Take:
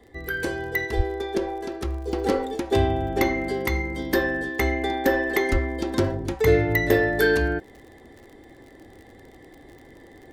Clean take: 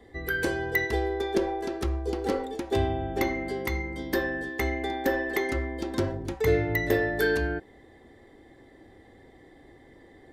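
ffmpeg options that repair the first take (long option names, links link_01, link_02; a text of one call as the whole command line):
ffmpeg -i in.wav -filter_complex "[0:a]adeclick=threshold=4,asplit=3[link_01][link_02][link_03];[link_01]afade=type=out:start_time=0.96:duration=0.02[link_04];[link_02]highpass=frequency=140:width=0.5412,highpass=frequency=140:width=1.3066,afade=type=in:start_time=0.96:duration=0.02,afade=type=out:start_time=1.08:duration=0.02[link_05];[link_03]afade=type=in:start_time=1.08:duration=0.02[link_06];[link_04][link_05][link_06]amix=inputs=3:normalize=0,asplit=3[link_07][link_08][link_09];[link_07]afade=type=out:start_time=5.51:duration=0.02[link_10];[link_08]highpass=frequency=140:width=0.5412,highpass=frequency=140:width=1.3066,afade=type=in:start_time=5.51:duration=0.02,afade=type=out:start_time=5.63:duration=0.02[link_11];[link_09]afade=type=in:start_time=5.63:duration=0.02[link_12];[link_10][link_11][link_12]amix=inputs=3:normalize=0,asetnsamples=nb_out_samples=441:pad=0,asendcmd='2.13 volume volume -5dB',volume=0dB" out.wav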